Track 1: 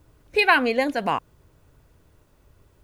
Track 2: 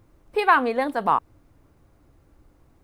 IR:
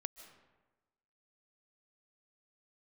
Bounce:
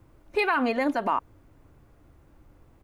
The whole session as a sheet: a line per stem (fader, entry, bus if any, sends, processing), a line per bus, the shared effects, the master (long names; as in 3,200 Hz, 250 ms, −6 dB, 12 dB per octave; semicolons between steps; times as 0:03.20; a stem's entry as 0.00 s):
−6.5 dB, 0.00 s, no send, no processing
+0.5 dB, 3.3 ms, no send, low-pass filter 2,900 Hz 24 dB per octave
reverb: not used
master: brickwall limiter −15.5 dBFS, peak gain reduction 10.5 dB